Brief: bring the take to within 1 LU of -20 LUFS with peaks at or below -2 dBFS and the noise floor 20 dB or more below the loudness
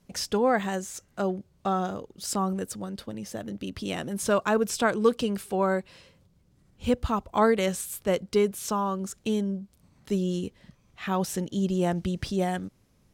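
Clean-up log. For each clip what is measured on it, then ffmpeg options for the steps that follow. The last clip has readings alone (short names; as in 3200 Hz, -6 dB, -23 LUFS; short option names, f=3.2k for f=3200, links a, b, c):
loudness -28.0 LUFS; peak -9.0 dBFS; loudness target -20.0 LUFS
-> -af "volume=8dB,alimiter=limit=-2dB:level=0:latency=1"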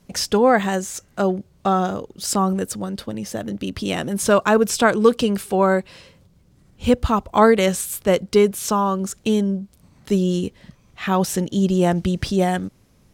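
loudness -20.5 LUFS; peak -2.0 dBFS; noise floor -56 dBFS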